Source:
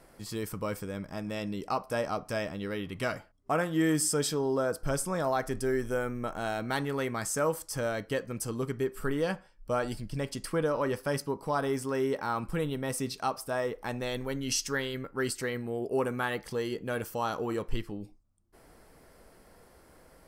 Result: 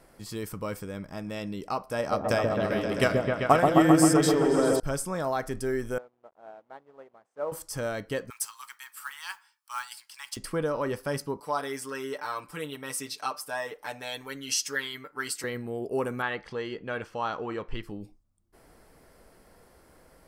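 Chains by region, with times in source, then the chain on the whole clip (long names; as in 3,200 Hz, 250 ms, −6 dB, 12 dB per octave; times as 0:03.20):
0:01.98–0:04.80: high-pass filter 43 Hz + transient designer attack +12 dB, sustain +4 dB + echo whose low-pass opens from repeat to repeat 131 ms, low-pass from 750 Hz, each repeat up 1 octave, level 0 dB
0:05.98–0:07.52: hold until the input has moved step −35 dBFS + resonant band-pass 650 Hz, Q 1.5 + expander for the loud parts 2.5 to 1, over −45 dBFS
0:08.30–0:10.37: Chebyshev high-pass filter 870 Hz, order 6 + high-shelf EQ 4,400 Hz +7 dB + noise that follows the level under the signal 19 dB
0:11.40–0:15.44: high-pass filter 900 Hz 6 dB per octave + comb filter 6.8 ms, depth 92%
0:16.22–0:17.83: low-pass filter 3,100 Hz + tilt shelving filter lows −4 dB, about 670 Hz
whole clip: no processing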